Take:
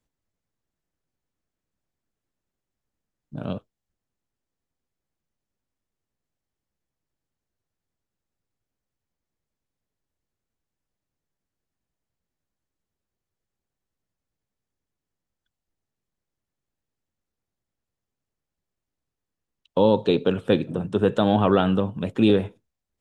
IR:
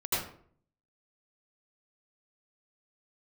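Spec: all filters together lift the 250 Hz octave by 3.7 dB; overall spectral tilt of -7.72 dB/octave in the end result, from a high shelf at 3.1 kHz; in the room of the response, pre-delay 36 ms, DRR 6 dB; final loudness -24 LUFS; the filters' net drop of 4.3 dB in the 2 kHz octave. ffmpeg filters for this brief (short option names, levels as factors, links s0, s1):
-filter_complex "[0:a]equalizer=f=250:t=o:g=5,equalizer=f=2000:t=o:g=-3.5,highshelf=f=3100:g=-7.5,asplit=2[s0][s1];[1:a]atrim=start_sample=2205,adelay=36[s2];[s1][s2]afir=irnorm=-1:irlink=0,volume=0.188[s3];[s0][s3]amix=inputs=2:normalize=0,volume=0.562"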